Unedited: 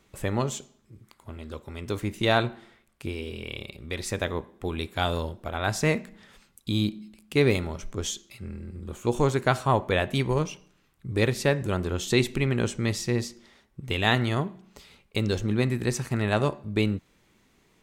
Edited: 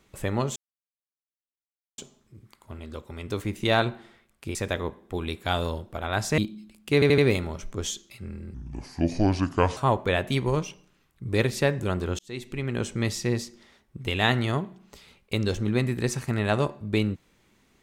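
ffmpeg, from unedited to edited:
ffmpeg -i in.wav -filter_complex "[0:a]asplit=10[link_01][link_02][link_03][link_04][link_05][link_06][link_07][link_08][link_09][link_10];[link_01]atrim=end=0.56,asetpts=PTS-STARTPTS,afade=type=out:start_time=0.556:duration=0.004:curve=hsin,apad=pad_dur=1.42[link_11];[link_02]atrim=start=0.56:end=3.132,asetpts=PTS-STARTPTS,afade=type=in:duration=0.004:curve=hsin[link_12];[link_03]atrim=start=4.058:end=5.892[link_13];[link_04]atrim=start=6.818:end=7.462[link_14];[link_05]atrim=start=7.378:end=7.462[link_15];[link_06]atrim=start=7.378:end=7.462[link_16];[link_07]atrim=start=7.378:end=8.744[link_17];[link_08]atrim=start=8.74:end=9.6,asetpts=PTS-STARTPTS,asetrate=30870,aresample=44100[link_18];[link_09]atrim=start=9.596:end=12.02,asetpts=PTS-STARTPTS,afade=type=out:start_time=2.42:duration=0.004:curve=hsin[link_19];[link_10]atrim=start=12.02,asetpts=PTS-STARTPTS,afade=type=in:duration=0.81[link_20];[link_11][link_12]concat=n=2:v=0:a=1[link_21];[link_21][link_13]acrossfade=duration=0.004:curve1=hsin:curve2=hsin[link_22];[link_22][link_14]acrossfade=duration=0.004:curve1=hsin:curve2=hsin[link_23];[link_23][link_15]acrossfade=duration=0.004:curve1=hsin:curve2=hsin[link_24];[link_24][link_16]acrossfade=duration=0.004:curve1=hsin:curve2=hsin[link_25];[link_25][link_17]acrossfade=duration=0.004:curve1=hsin:curve2=hsin[link_26];[link_26][link_18]acrossfade=duration=0.004:curve1=hsin:curve2=hsin[link_27];[link_19][link_20]concat=n=2:v=0:a=1[link_28];[link_27][link_28]acrossfade=duration=0.004:curve1=hsin:curve2=hsin" out.wav

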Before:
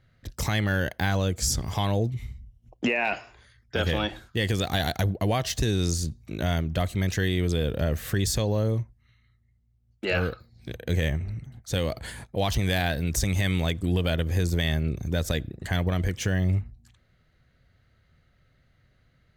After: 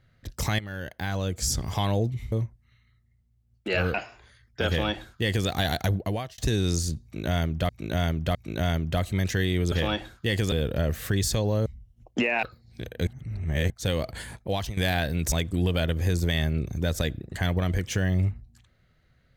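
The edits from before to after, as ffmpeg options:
ffmpeg -i in.wav -filter_complex "[0:a]asplit=15[link_01][link_02][link_03][link_04][link_05][link_06][link_07][link_08][link_09][link_10][link_11][link_12][link_13][link_14][link_15];[link_01]atrim=end=0.59,asetpts=PTS-STARTPTS,afade=type=out:start_time=0.586:duration=0.004:curve=hsin:silence=0.177828[link_16];[link_02]atrim=start=0.59:end=2.322,asetpts=PTS-STARTPTS,afade=type=in:duration=1.06:silence=0.177828[link_17];[link_03]atrim=start=8.688:end=10.312[link_18];[link_04]atrim=start=3.088:end=5.53,asetpts=PTS-STARTPTS,afade=type=out:start_time=2.042:duration=0.4[link_19];[link_05]atrim=start=5.53:end=6.842,asetpts=PTS-STARTPTS,afade=type=in:duration=0.004:curve=hsin[link_20];[link_06]atrim=start=6.178:end=6.842[link_21];[link_07]atrim=start=6.178:end=7.552[link_22];[link_08]atrim=start=3.828:end=4.632[link_23];[link_09]atrim=start=7.548:end=8.692[link_24];[link_10]atrim=start=2.318:end=3.092[link_25];[link_11]atrim=start=10.308:end=10.952[link_26];[link_12]atrim=start=10.948:end=11.582,asetpts=PTS-STARTPTS,areverse[link_27];[link_13]atrim=start=11.578:end=12.65,asetpts=PTS-STARTPTS,afade=type=out:start_time=0.752:duration=0.32:silence=0.199526[link_28];[link_14]atrim=start=12.65:end=13.202,asetpts=PTS-STARTPTS,afade=type=in:duration=0.004:curve=hsin:silence=0.199526[link_29];[link_15]atrim=start=13.618[link_30];[link_16][link_17]concat=n=2:v=0:a=1[link_31];[link_31][link_18]acrossfade=duration=0.004:curve1=hsin:curve2=hsin[link_32];[link_19][link_20]concat=n=2:v=0:a=1[link_33];[link_32][link_33]acrossfade=duration=0.004:curve1=hsin:curve2=hsin[link_34];[link_34][link_21]acrossfade=duration=0.004:curve1=hsin:curve2=hsin[link_35];[link_35][link_22]acrossfade=duration=0.004:curve1=hsin:curve2=hsin[link_36];[link_36][link_23]acrossfade=duration=0.004:curve1=hsin:curve2=hsin[link_37];[link_37][link_24]acrossfade=duration=0.004:curve1=hsin:curve2=hsin[link_38];[link_38][link_25]acrossfade=duration=0.004:curve1=hsin:curve2=hsin[link_39];[link_39][link_26]acrossfade=duration=0.004:curve1=hsin:curve2=hsin[link_40];[link_40][link_27]acrossfade=duration=0.004:curve1=hsin:curve2=hsin[link_41];[link_28][link_29]concat=n=2:v=0:a=1[link_42];[link_41][link_42]acrossfade=duration=0.004:curve1=hsin:curve2=hsin[link_43];[link_43][link_30]acrossfade=duration=0.004:curve1=hsin:curve2=hsin" out.wav

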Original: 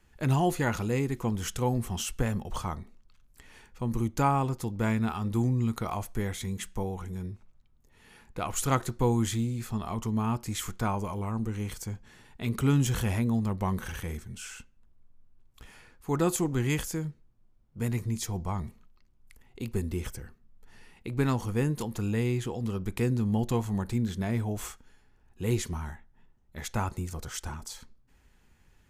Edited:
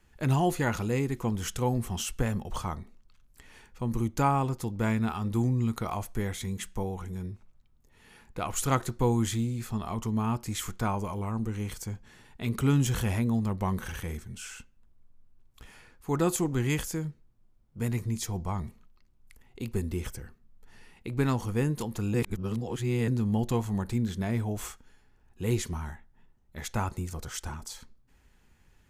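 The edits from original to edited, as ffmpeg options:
ffmpeg -i in.wav -filter_complex "[0:a]asplit=3[link_01][link_02][link_03];[link_01]atrim=end=22.142[link_04];[link_02]atrim=start=22.138:end=23.082,asetpts=PTS-STARTPTS,areverse[link_05];[link_03]atrim=start=23.078[link_06];[link_04][link_05]acrossfade=duration=0.004:curve1=hsin:curve2=hsin[link_07];[link_07][link_06]acrossfade=duration=0.004:curve1=hsin:curve2=hsin" out.wav

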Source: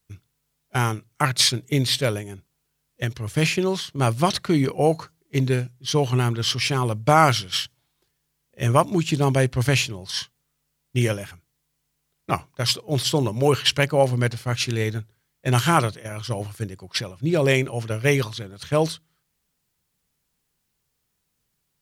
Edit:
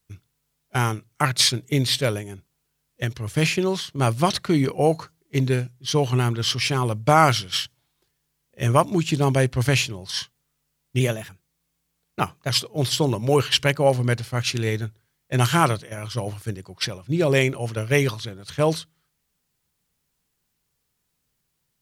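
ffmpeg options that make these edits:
ffmpeg -i in.wav -filter_complex "[0:a]asplit=3[link_01][link_02][link_03];[link_01]atrim=end=11.004[link_04];[link_02]atrim=start=11:end=12.63,asetpts=PTS-STARTPTS,asetrate=48069,aresample=44100[link_05];[link_03]atrim=start=12.626[link_06];[link_04][link_05]acrossfade=duration=0.004:curve1=hsin:curve2=hsin[link_07];[link_07][link_06]acrossfade=duration=0.004:curve1=hsin:curve2=hsin" out.wav

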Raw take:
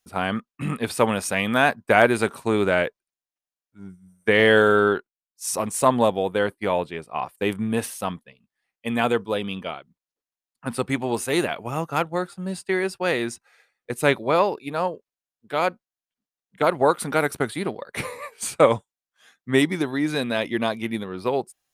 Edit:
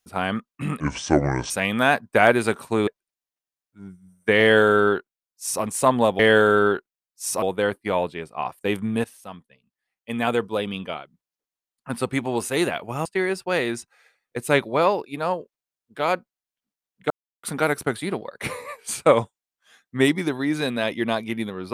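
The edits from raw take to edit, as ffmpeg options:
ffmpeg -i in.wav -filter_complex "[0:a]asplit=10[link_01][link_02][link_03][link_04][link_05][link_06][link_07][link_08][link_09][link_10];[link_01]atrim=end=0.804[link_11];[link_02]atrim=start=0.8:end=1.25,asetpts=PTS-STARTPTS,asetrate=28224,aresample=44100[link_12];[link_03]atrim=start=1.246:end=2.622[link_13];[link_04]atrim=start=2.868:end=6.192[link_14];[link_05]atrim=start=4.398:end=5.632[link_15];[link_06]atrim=start=6.188:end=7.81,asetpts=PTS-STARTPTS,afade=type=out:start_time=1.618:duration=0.004:curve=hsin:silence=0.141254[link_16];[link_07]atrim=start=7.81:end=11.822,asetpts=PTS-STARTPTS,afade=type=in:duration=1.45:silence=0.141254[link_17];[link_08]atrim=start=12.588:end=16.64,asetpts=PTS-STARTPTS,afade=type=out:start_time=4.048:duration=0.004:curve=hsin[link_18];[link_09]atrim=start=16.64:end=16.97,asetpts=PTS-STARTPTS,volume=0[link_19];[link_10]atrim=start=16.97,asetpts=PTS-STARTPTS,afade=type=in:duration=0.004:curve=hsin[link_20];[link_11][link_12]acrossfade=duration=0.004:curve1=hsin:curve2=hsin[link_21];[link_21][link_13]acrossfade=duration=0.004:curve1=hsin:curve2=hsin[link_22];[link_22][link_14]acrossfade=duration=0.004:curve1=hsin:curve2=hsin[link_23];[link_23][link_15]acrossfade=duration=0.004:curve1=hsin:curve2=hsin[link_24];[link_16][link_17]concat=n=2:v=0:a=1[link_25];[link_24][link_25]acrossfade=duration=0.004:curve1=hsin:curve2=hsin[link_26];[link_18][link_19][link_20]concat=n=3:v=0:a=1[link_27];[link_26][link_27]acrossfade=duration=0.004:curve1=hsin:curve2=hsin" out.wav

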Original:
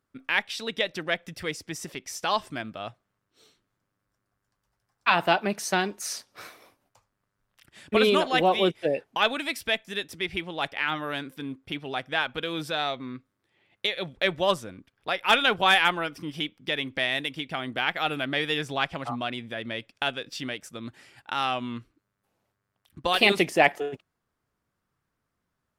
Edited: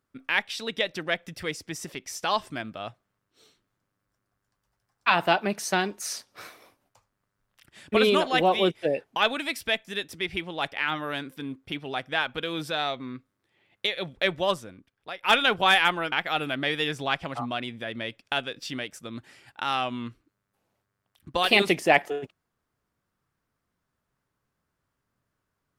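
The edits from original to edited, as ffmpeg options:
ffmpeg -i in.wav -filter_complex "[0:a]asplit=3[link_01][link_02][link_03];[link_01]atrim=end=15.23,asetpts=PTS-STARTPTS,afade=type=out:start_time=14.25:duration=0.98:silence=0.266073[link_04];[link_02]atrim=start=15.23:end=16.122,asetpts=PTS-STARTPTS,afade=type=in:duration=0.004:curve=hsin:silence=0.266073[link_05];[link_03]atrim=start=17.818[link_06];[link_04][link_05]concat=n=2:v=0:a=1[link_07];[link_07][link_06]acrossfade=duration=0.004:curve1=hsin:curve2=hsin" out.wav

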